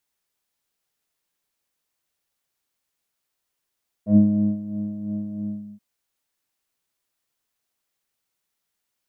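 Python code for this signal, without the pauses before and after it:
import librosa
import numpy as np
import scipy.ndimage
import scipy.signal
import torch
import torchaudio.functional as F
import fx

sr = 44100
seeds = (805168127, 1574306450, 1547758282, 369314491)

y = fx.sub_patch_tremolo(sr, seeds[0], note=56, wave='triangle', wave2='triangle', interval_st=19, detune_cents=16, level2_db=-9.0, sub_db=-12.5, noise_db=-30.0, kind='lowpass', cutoff_hz=210.0, q=2.9, env_oct=1.5, env_decay_s=0.09, env_sustain_pct=40, attack_ms=102.0, decay_s=0.4, sustain_db=-15.0, release_s=0.39, note_s=1.34, lfo_hz=3.0, tremolo_db=6)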